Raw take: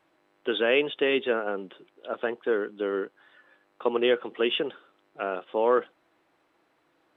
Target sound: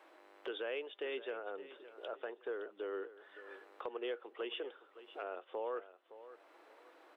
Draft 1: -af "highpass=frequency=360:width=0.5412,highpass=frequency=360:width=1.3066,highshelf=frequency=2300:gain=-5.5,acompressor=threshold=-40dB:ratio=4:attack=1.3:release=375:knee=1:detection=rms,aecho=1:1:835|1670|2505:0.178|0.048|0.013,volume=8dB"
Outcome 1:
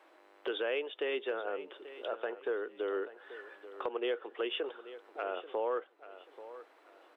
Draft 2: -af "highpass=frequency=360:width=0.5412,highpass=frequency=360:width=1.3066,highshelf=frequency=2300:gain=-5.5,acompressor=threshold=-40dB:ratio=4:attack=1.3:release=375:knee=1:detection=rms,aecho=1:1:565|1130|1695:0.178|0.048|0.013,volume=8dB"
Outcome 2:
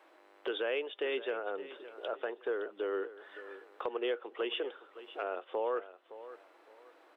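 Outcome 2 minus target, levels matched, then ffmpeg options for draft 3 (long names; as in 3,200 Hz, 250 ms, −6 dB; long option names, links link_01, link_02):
downward compressor: peak gain reduction −6.5 dB
-af "highpass=frequency=360:width=0.5412,highpass=frequency=360:width=1.3066,highshelf=frequency=2300:gain=-5.5,acompressor=threshold=-48.5dB:ratio=4:attack=1.3:release=375:knee=1:detection=rms,aecho=1:1:565|1130|1695:0.178|0.048|0.013,volume=8dB"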